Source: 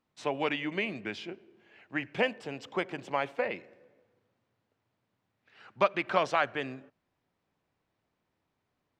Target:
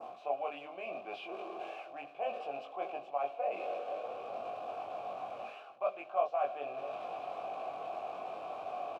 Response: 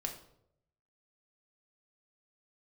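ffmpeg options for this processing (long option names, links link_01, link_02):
-filter_complex "[0:a]aeval=exprs='val(0)+0.5*0.015*sgn(val(0))':channel_layout=same,adynamicequalizer=threshold=0.00447:dfrequency=3100:dqfactor=0.92:tfrequency=3100:tqfactor=0.92:attack=5:release=100:ratio=0.375:range=3:mode=boostabove:tftype=bell,asplit=2[link_01][link_02];[link_02]adynamicsmooth=sensitivity=1:basefreq=570,volume=-1.5dB[link_03];[link_01][link_03]amix=inputs=2:normalize=0,bandreject=frequency=50:width_type=h:width=6,bandreject=frequency=100:width_type=h:width=6,bandreject=frequency=150:width_type=h:width=6,bandreject=frequency=200:width_type=h:width=6,bandreject=frequency=250:width_type=h:width=6,bandreject=frequency=300:width_type=h:width=6,areverse,acompressor=threshold=-35dB:ratio=8,areverse,asplit=3[link_04][link_05][link_06];[link_04]bandpass=frequency=730:width_type=q:width=8,volume=0dB[link_07];[link_05]bandpass=frequency=1090:width_type=q:width=8,volume=-6dB[link_08];[link_06]bandpass=frequency=2440:width_type=q:width=8,volume=-9dB[link_09];[link_07][link_08][link_09]amix=inputs=3:normalize=0,equalizer=frequency=660:width=0.88:gain=10.5,asplit=2[link_10][link_11];[link_11]adelay=21,volume=-3dB[link_12];[link_10][link_12]amix=inputs=2:normalize=0,volume=2.5dB"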